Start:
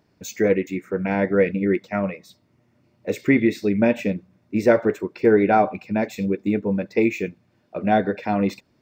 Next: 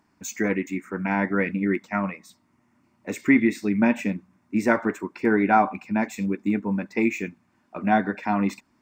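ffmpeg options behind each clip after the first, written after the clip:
-af "equalizer=f=125:t=o:w=1:g=-7,equalizer=f=250:t=o:w=1:g=7,equalizer=f=500:t=o:w=1:g=-11,equalizer=f=1k:t=o:w=1:g=10,equalizer=f=2k:t=o:w=1:g=3,equalizer=f=4k:t=o:w=1:g=-5,equalizer=f=8k:t=o:w=1:g=8,volume=-3dB"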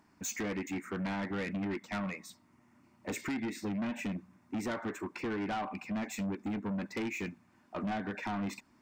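-af "acompressor=threshold=-26dB:ratio=6,asoftclip=type=tanh:threshold=-31.5dB"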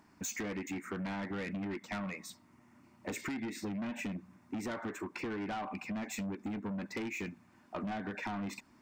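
-af "acompressor=threshold=-39dB:ratio=6,volume=2.5dB"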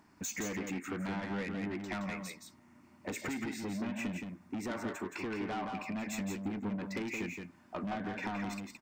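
-af "aecho=1:1:170:0.562"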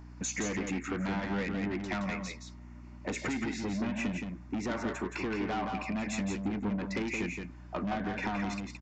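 -af "aeval=exprs='val(0)+0.00282*(sin(2*PI*60*n/s)+sin(2*PI*2*60*n/s)/2+sin(2*PI*3*60*n/s)/3+sin(2*PI*4*60*n/s)/4+sin(2*PI*5*60*n/s)/5)':c=same,aresample=16000,aresample=44100,volume=4dB"

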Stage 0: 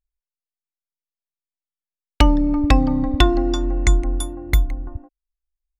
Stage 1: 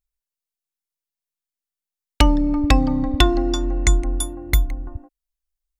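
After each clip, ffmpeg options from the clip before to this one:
-af "highshelf=f=4.2k:g=7,volume=-1dB"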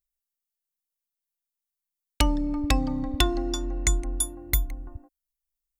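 -af "crystalizer=i=1.5:c=0,volume=-8dB"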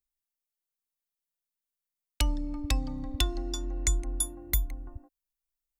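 -filter_complex "[0:a]acrossover=split=120|3000[a][b][c];[b]acompressor=threshold=-38dB:ratio=2[d];[a][d][c]amix=inputs=3:normalize=0,volume=-3dB"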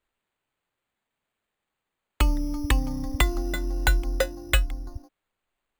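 -af "acrusher=samples=8:mix=1:aa=0.000001,volume=5.5dB"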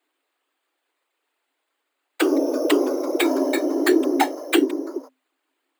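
-af "aeval=exprs='0.501*sin(PI/2*2.82*val(0)/0.501)':c=same,afftfilt=real='hypot(re,im)*cos(2*PI*random(0))':imag='hypot(re,im)*sin(2*PI*random(1))':win_size=512:overlap=0.75,afreqshift=260"

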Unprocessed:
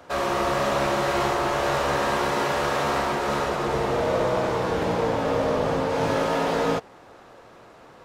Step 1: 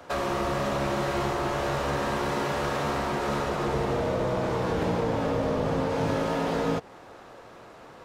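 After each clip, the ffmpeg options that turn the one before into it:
-filter_complex "[0:a]acrossover=split=310[a][b];[b]acompressor=threshold=-28dB:ratio=6[c];[a][c]amix=inputs=2:normalize=0,volume=1dB"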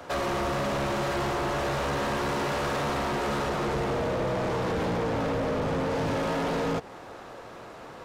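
-af "asoftclip=type=tanh:threshold=-28.5dB,volume=4dB"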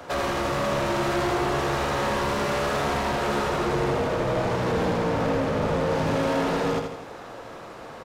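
-af "aecho=1:1:81|162|243|324|405|486:0.531|0.255|0.122|0.0587|0.0282|0.0135,volume=2dB"

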